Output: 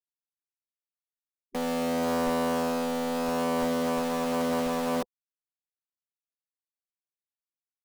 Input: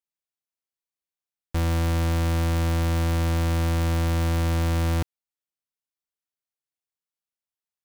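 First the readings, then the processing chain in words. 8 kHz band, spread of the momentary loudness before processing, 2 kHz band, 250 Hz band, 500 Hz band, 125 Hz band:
−2.0 dB, 3 LU, −2.5 dB, +0.5 dB, +5.0 dB, −20.5 dB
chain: Butterworth low-pass 1,200 Hz 72 dB per octave
gate on every frequency bin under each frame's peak −15 dB weak
rotating-speaker cabinet horn 0.75 Hz, later 5.5 Hz, at 0:03.36
in parallel at −3 dB: log-companded quantiser 2 bits

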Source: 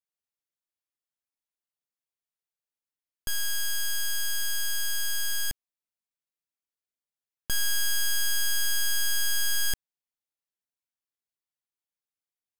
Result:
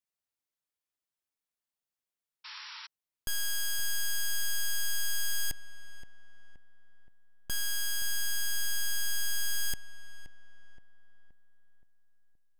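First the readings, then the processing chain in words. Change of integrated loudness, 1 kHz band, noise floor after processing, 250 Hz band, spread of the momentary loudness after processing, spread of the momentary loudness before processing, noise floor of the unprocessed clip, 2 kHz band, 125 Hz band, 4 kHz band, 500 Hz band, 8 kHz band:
−5.0 dB, −3.0 dB, below −85 dBFS, −4.0 dB, 17 LU, 7 LU, below −85 dBFS, −4.0 dB, −2.5 dB, −5.0 dB, −5.0 dB, −4.5 dB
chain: brickwall limiter −29 dBFS, peak gain reduction 5.5 dB
feedback echo with a low-pass in the loop 523 ms, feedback 53%, low-pass 1,800 Hz, level −11.5 dB
sound drawn into the spectrogram noise, 0:02.44–0:02.87, 850–5,700 Hz −45 dBFS

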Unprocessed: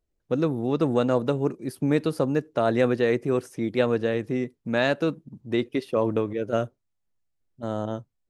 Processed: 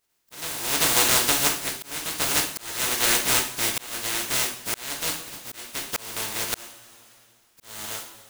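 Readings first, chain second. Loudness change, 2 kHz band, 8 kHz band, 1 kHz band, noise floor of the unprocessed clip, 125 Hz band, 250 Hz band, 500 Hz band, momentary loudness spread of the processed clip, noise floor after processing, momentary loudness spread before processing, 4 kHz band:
+2.5 dB, +5.5 dB, can't be measured, +1.5 dB, −77 dBFS, −11.0 dB, −12.5 dB, −12.0 dB, 15 LU, −62 dBFS, 8 LU, +14.5 dB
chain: compressing power law on the bin magnitudes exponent 0.11
coupled-rooms reverb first 0.44 s, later 1.8 s, from −18 dB, DRR −0.5 dB
volume swells 616 ms

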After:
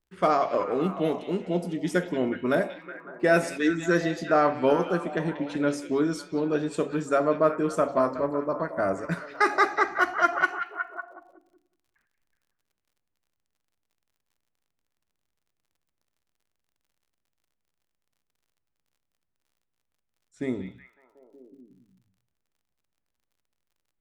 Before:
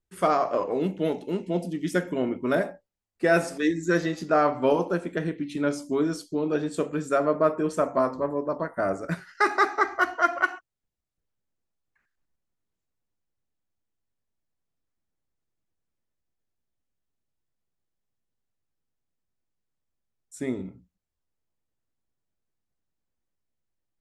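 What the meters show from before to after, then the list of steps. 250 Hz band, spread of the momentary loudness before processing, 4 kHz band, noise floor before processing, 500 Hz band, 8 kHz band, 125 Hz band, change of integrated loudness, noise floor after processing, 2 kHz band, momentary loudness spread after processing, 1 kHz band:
0.0 dB, 8 LU, +0.5 dB, −84 dBFS, 0.0 dB, −0.5 dB, 0.0 dB, 0.0 dB, −81 dBFS, +0.5 dB, 10 LU, +0.5 dB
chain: low-pass that shuts in the quiet parts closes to 2,900 Hz, open at −23 dBFS
echo through a band-pass that steps 185 ms, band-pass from 2,900 Hz, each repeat −0.7 octaves, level −6.5 dB
surface crackle 48 per second −58 dBFS

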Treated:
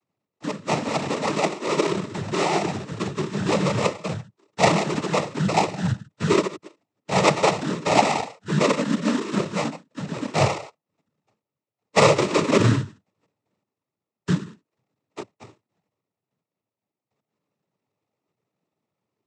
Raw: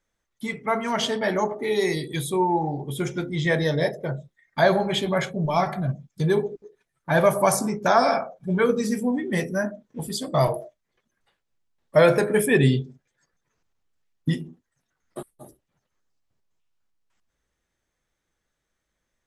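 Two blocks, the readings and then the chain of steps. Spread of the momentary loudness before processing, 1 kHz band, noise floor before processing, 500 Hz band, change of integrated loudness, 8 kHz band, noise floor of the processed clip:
15 LU, +1.5 dB, −80 dBFS, −1.0 dB, +0.5 dB, +2.0 dB, below −85 dBFS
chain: treble cut that deepens with the level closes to 2,900 Hz, closed at −15 dBFS
decimation without filtering 29×
cochlear-implant simulation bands 12
level +1 dB

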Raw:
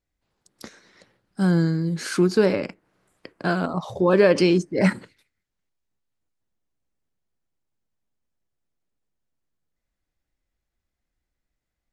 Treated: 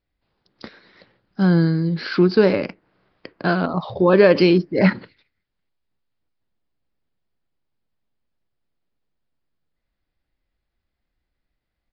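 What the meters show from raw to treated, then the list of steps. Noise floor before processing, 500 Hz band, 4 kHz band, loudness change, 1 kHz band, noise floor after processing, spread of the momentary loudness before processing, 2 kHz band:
−83 dBFS, +3.5 dB, +3.0 dB, +3.5 dB, +3.5 dB, −80 dBFS, 12 LU, +3.5 dB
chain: downsampling to 11,025 Hz
level +3.5 dB

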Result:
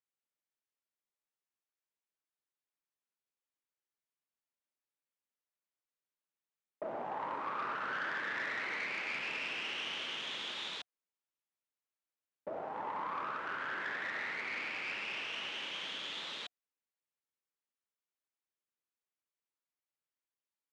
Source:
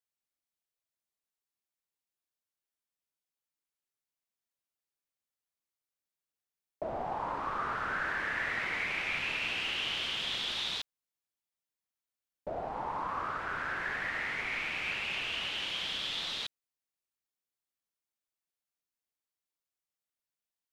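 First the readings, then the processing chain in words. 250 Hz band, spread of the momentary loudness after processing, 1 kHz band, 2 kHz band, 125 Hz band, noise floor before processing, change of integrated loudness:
−4.0 dB, 6 LU, −3.5 dB, −4.0 dB, −10.5 dB, below −85 dBFS, −4.5 dB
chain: parametric band 4,700 Hz −7 dB 1.2 octaves
notch filter 720 Hz, Q 12
tube saturation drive 30 dB, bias 0.45
band-pass filter 220–6,500 Hz

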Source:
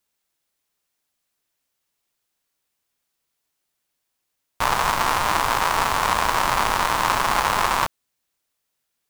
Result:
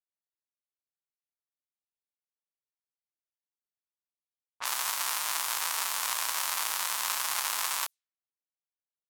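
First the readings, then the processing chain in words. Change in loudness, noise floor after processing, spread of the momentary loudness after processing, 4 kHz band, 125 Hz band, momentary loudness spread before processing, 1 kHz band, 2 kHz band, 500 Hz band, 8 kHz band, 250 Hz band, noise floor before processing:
−8.5 dB, below −85 dBFS, 3 LU, −5.5 dB, below −35 dB, 3 LU, −16.5 dB, −11.5 dB, −21.5 dB, 0.0 dB, below −25 dB, −78 dBFS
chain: low-pass that shuts in the quiet parts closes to 580 Hz, open at −18 dBFS
first difference

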